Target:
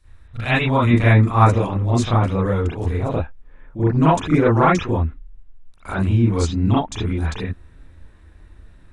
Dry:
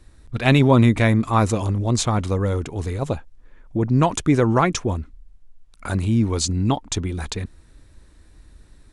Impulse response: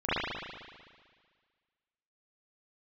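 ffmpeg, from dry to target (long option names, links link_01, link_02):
-filter_complex "[0:a]asetnsamples=nb_out_samples=441:pad=0,asendcmd='0.87 equalizer g -2',equalizer=frequency=310:width=0.64:gain=-12[link_01];[1:a]atrim=start_sample=2205,atrim=end_sample=3528[link_02];[link_01][link_02]afir=irnorm=-1:irlink=0,volume=-6dB"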